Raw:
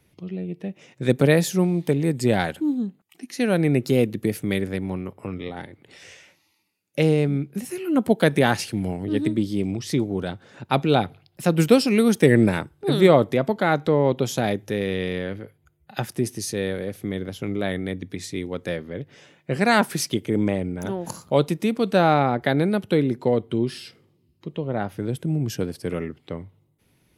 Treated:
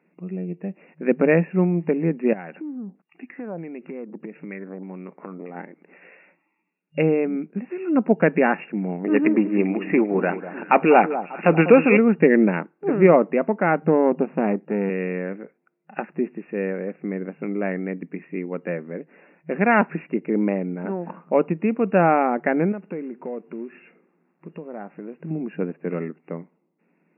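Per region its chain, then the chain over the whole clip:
0:02.33–0:05.55: downward compressor 5 to 1, threshold −32 dBFS + auto-filter low-pass saw down 1.6 Hz 710–7,500 Hz
0:09.04–0:11.97: mid-hump overdrive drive 17 dB, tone 6,200 Hz, clips at −3 dBFS + delay that swaps between a low-pass and a high-pass 197 ms, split 1,200 Hz, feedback 65%, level −11.5 dB
0:13.79–0:14.90: gain on one half-wave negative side −7 dB + spectral tilt −2.5 dB per octave
0:22.72–0:25.31: Chebyshev low-pass filter 2,900 Hz, order 6 + downward compressor 2 to 1, threshold −36 dBFS + log-companded quantiser 6 bits
whole clip: adaptive Wiener filter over 9 samples; brick-wall band-pass 160–2,800 Hz; level +1 dB

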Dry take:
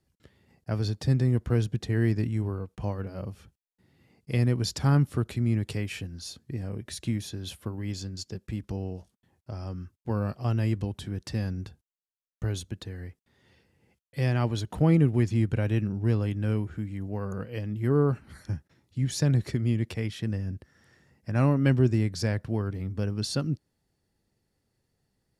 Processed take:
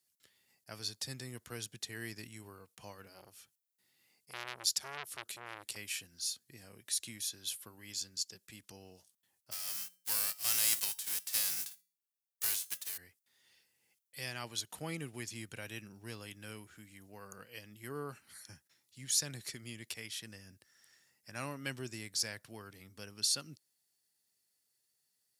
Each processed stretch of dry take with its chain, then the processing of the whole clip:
0:03.13–0:05.76: low-shelf EQ 180 Hz −3 dB + saturating transformer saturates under 1,500 Hz
0:09.51–0:12.96: spectral envelope flattened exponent 0.3 + tuned comb filter 180 Hz, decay 0.44 s, harmonics odd, mix 50%
whole clip: high-pass filter 96 Hz; first-order pre-emphasis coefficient 0.97; level +5.5 dB

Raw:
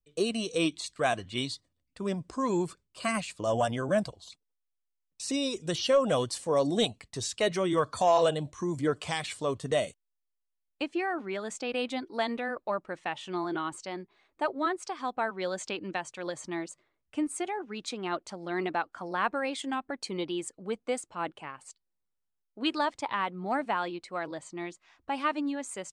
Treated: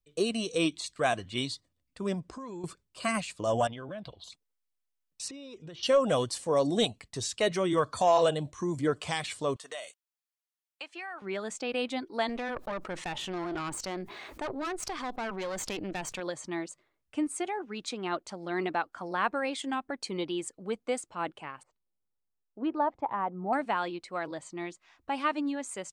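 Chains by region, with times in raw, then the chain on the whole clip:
0:02.20–0:02.64: high-shelf EQ 8,300 Hz −9.5 dB + downward compressor 10 to 1, threshold −38 dBFS
0:03.67–0:04.24: high shelf with overshoot 5,000 Hz −12 dB, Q 3 + downward compressor 5 to 1, threshold −38 dBFS
0:05.28–0:05.83: low-pass filter 5,900 Hz + bass and treble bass −2 dB, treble −10 dB + downward compressor 8 to 1, threshold −42 dBFS
0:09.56–0:11.22: high-pass filter 880 Hz + downward compressor 3 to 1, threshold −37 dBFS
0:12.29–0:16.20: tube saturation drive 31 dB, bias 0.8 + envelope flattener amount 70%
0:21.63–0:23.53: low-pass filter 1,000 Hz + dynamic equaliser 790 Hz, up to +6 dB, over −44 dBFS, Q 2.8
whole clip: no processing

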